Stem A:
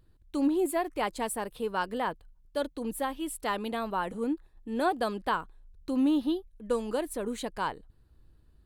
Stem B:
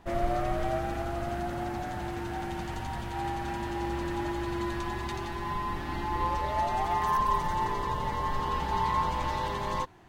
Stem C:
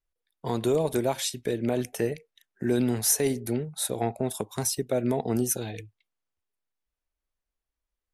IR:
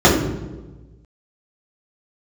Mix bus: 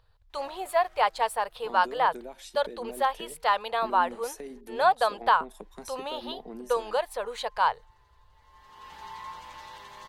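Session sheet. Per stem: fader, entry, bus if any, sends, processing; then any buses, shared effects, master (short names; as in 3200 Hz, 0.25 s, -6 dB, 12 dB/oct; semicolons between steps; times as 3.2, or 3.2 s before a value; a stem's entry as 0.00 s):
-2.5 dB, 0.00 s, no send, EQ curve 110 Hz 0 dB, 310 Hz -25 dB, 460 Hz +4 dB, 870 Hz +12 dB, 2100 Hz +7 dB, 4600 Hz +9 dB, 7800 Hz -2 dB
-16.0 dB, 0.30 s, muted 4.61–5.5, no send, tilt shelf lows -9 dB, about 690 Hz; auto duck -21 dB, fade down 1.70 s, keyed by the first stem
-10.0 dB, 1.20 s, no send, elliptic high-pass 170 Hz; high shelf 4300 Hz -8.5 dB; compressor, threshold -27 dBFS, peak gain reduction 7 dB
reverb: off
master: dry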